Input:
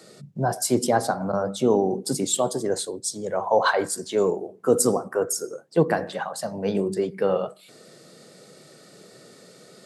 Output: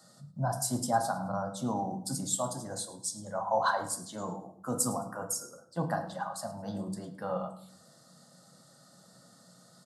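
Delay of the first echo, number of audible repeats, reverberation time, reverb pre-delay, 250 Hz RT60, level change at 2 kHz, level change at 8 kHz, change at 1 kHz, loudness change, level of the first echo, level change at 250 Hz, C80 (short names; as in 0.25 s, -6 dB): 0.107 s, 2, 0.65 s, 5 ms, 0.95 s, -9.5 dB, -6.0 dB, -5.5 dB, -9.5 dB, -18.0 dB, -10.0 dB, 14.0 dB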